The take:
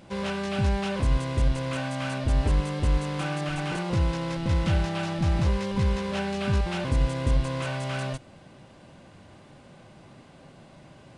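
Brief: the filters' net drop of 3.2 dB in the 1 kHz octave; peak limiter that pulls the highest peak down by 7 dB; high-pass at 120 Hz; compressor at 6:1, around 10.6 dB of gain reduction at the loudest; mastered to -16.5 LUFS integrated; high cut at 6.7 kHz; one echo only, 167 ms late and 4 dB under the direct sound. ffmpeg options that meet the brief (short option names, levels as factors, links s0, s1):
-af "highpass=120,lowpass=6700,equalizer=f=1000:t=o:g=-4,acompressor=threshold=0.0178:ratio=6,alimiter=level_in=2.66:limit=0.0631:level=0:latency=1,volume=0.376,aecho=1:1:167:0.631,volume=14.1"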